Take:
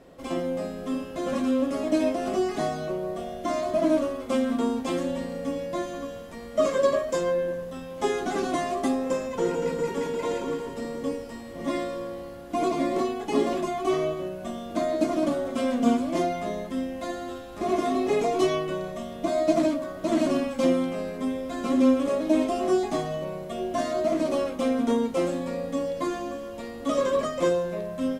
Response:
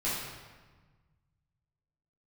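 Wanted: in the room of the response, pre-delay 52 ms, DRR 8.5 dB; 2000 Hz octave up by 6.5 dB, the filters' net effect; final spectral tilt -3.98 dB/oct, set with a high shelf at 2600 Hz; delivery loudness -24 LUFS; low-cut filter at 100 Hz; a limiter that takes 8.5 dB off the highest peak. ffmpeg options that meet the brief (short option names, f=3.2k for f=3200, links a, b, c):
-filter_complex "[0:a]highpass=100,equalizer=f=2k:t=o:g=4.5,highshelf=f=2.6k:g=8,alimiter=limit=-17dB:level=0:latency=1,asplit=2[a][b];[1:a]atrim=start_sample=2205,adelay=52[c];[b][c]afir=irnorm=-1:irlink=0,volume=-16dB[d];[a][d]amix=inputs=2:normalize=0,volume=3.5dB"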